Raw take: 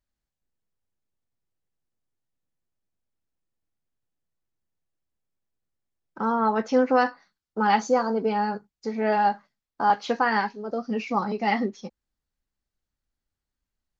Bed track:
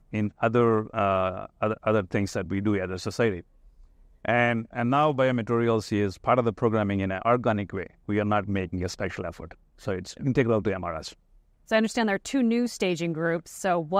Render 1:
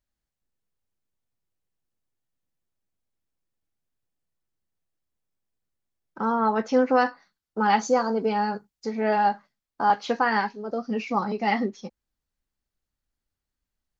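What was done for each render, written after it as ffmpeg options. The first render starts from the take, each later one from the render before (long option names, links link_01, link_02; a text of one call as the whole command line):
ffmpeg -i in.wav -filter_complex "[0:a]asettb=1/sr,asplit=3[link_01][link_02][link_03];[link_01]atrim=end=7.834[link_04];[link_02]atrim=start=7.83:end=8.9,asetpts=PTS-STARTPTS,afade=type=in:duration=0.004:curve=qsin,afade=type=out:start_time=1.066:duration=0.004:curve=qsin,highshelf=frequency=4000:gain=5[link_05];[link_03]atrim=start=8.896[link_06];[link_04][link_05]acrossfade=duration=0.004:curve1=hsin:curve2=qsin[link_07];[link_07][link_06]acrossfade=duration=0.004:curve1=qsin:curve2=hsin" out.wav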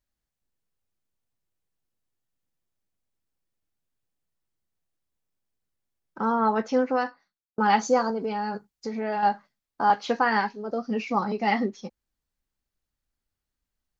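ffmpeg -i in.wav -filter_complex "[0:a]asettb=1/sr,asplit=3[link_01][link_02][link_03];[link_01]atrim=end=8.104[link_04];[link_02]atrim=start=8.1:end=9.23,asetpts=PTS-STARTPTS,afade=type=in:duration=0.004:curve=qsin,afade=type=out:start_time=1.126:duration=0.004:curve=qsin,acompressor=threshold=-27dB:ratio=2.5:attack=3.2:release=140:knee=1:detection=peak[link_05];[link_03]atrim=start=9.226[link_06];[link_04][link_05]acrossfade=duration=0.004:curve1=hsin:curve2=qsin[link_07];[link_07][link_06]acrossfade=duration=0.004:curve1=qsin:curve2=hsin,asplit=2[link_08][link_09];[link_08]atrim=end=7.58,asetpts=PTS-STARTPTS,afade=type=out:start_time=6.51:duration=1.07[link_10];[link_09]atrim=start=7.58,asetpts=PTS-STARTPTS,afade=type=in:duration=0.004:curve=hsin[link_11];[link_10][link_11]concat=n=2:v=0:a=1" out.wav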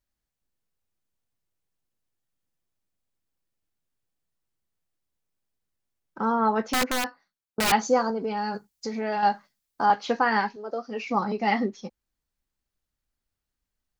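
ffmpeg -i in.wav -filter_complex "[0:a]asettb=1/sr,asplit=3[link_01][link_02][link_03];[link_01]atrim=end=6.664[link_04];[link_02]atrim=start=6.66:end=7.72,asetpts=PTS-STARTPTS,afade=type=in:duration=0.004:curve=qsin,afade=type=out:start_time=1.056:duration=0.004:curve=qsin,aeval=exprs='(mod(7.94*val(0)+1,2)-1)/7.94':channel_layout=same[link_05];[link_03]atrim=start=7.716[link_06];[link_04][link_05]acrossfade=duration=0.004:curve1=hsin:curve2=qsin[link_07];[link_07][link_06]acrossfade=duration=0.004:curve1=qsin:curve2=hsin,asettb=1/sr,asplit=3[link_08][link_09][link_10];[link_08]atrim=end=8.374[link_11];[link_09]atrim=start=8.37:end=9.86,asetpts=PTS-STARTPTS,afade=type=in:duration=0.004:curve=qsin,afade=type=out:start_time=1.486:duration=0.004:curve=qsin,highshelf=frequency=4000:gain=10[link_12];[link_10]atrim=start=9.856[link_13];[link_11][link_12]acrossfade=duration=0.004:curve1=hsin:curve2=qsin[link_14];[link_14][link_13]acrossfade=duration=0.004:curve1=qsin:curve2=hsin,asettb=1/sr,asplit=3[link_15][link_16][link_17];[link_15]atrim=end=10.564[link_18];[link_16]atrim=start=10.56:end=11.06,asetpts=PTS-STARTPTS,afade=type=in:duration=0.004:curve=qsin,afade=type=out:start_time=0.496:duration=0.004:curve=qsin,highpass=380[link_19];[link_17]atrim=start=11.056[link_20];[link_18][link_19]acrossfade=duration=0.004:curve1=hsin:curve2=qsin[link_21];[link_21][link_20]acrossfade=duration=0.004:curve1=qsin:curve2=hsin" out.wav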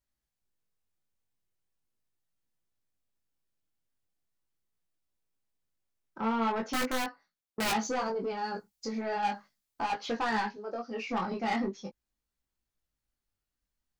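ffmpeg -i in.wav -af "asoftclip=type=tanh:threshold=-22.5dB,flanger=delay=17.5:depth=4.8:speed=0.4" out.wav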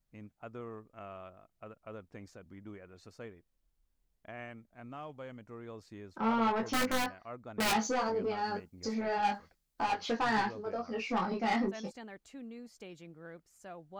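ffmpeg -i in.wav -i bed.wav -filter_complex "[1:a]volume=-23dB[link_01];[0:a][link_01]amix=inputs=2:normalize=0" out.wav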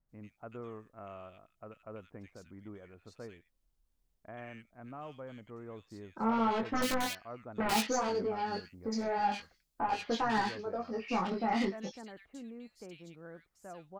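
ffmpeg -i in.wav -filter_complex "[0:a]acrossover=split=1900[link_01][link_02];[link_02]adelay=90[link_03];[link_01][link_03]amix=inputs=2:normalize=0" out.wav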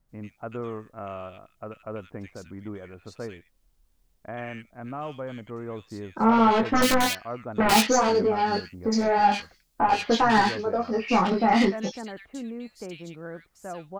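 ffmpeg -i in.wav -af "volume=11dB" out.wav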